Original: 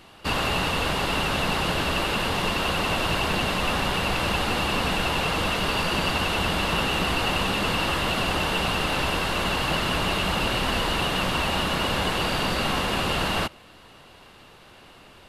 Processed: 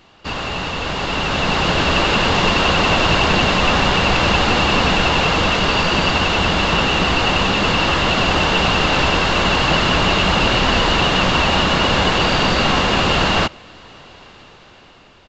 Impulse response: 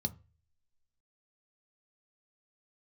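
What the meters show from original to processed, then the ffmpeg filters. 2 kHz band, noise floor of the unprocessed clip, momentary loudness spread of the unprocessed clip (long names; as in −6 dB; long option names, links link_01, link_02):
+8.5 dB, −50 dBFS, 1 LU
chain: -af "dynaudnorm=framelen=400:gausssize=7:maxgain=11.5dB,aresample=16000,aresample=44100"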